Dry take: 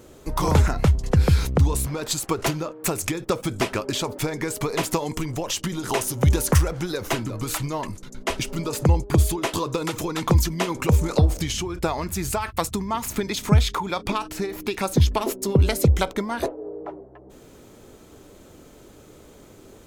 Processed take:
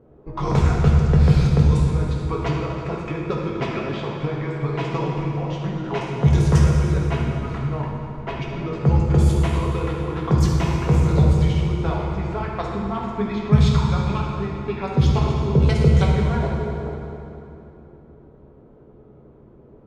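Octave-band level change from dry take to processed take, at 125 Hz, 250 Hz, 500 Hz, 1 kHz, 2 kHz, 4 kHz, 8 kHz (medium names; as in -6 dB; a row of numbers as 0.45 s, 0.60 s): +5.0 dB, +3.5 dB, +0.5 dB, -0.5 dB, -1.5 dB, -5.5 dB, -12.5 dB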